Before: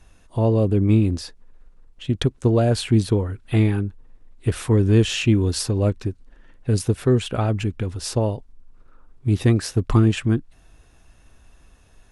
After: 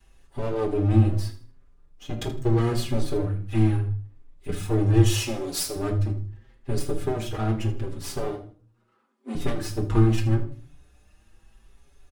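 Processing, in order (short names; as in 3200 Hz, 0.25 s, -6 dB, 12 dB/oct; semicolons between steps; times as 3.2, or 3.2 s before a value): minimum comb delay 2.4 ms; 3.76–4.49 compressor 3:1, threshold -29 dBFS, peak gain reduction 8.5 dB; 5.06–5.76 tone controls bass -12 dB, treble +7 dB; 8.23–9.35 Chebyshev high-pass 190 Hz, order 8; feedback echo 79 ms, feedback 28%, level -14.5 dB; reverb RT60 0.40 s, pre-delay 5 ms, DRR 3.5 dB; endless flanger 5.7 ms +0.78 Hz; gain -3.5 dB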